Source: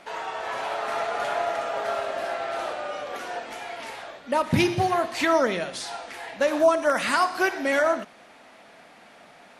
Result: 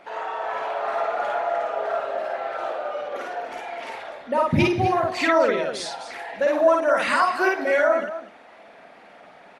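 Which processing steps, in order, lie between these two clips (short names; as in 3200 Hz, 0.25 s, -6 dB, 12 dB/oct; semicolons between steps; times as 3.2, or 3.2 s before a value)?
formant sharpening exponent 1.5; loudspeakers at several distances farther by 18 m -1 dB, 87 m -10 dB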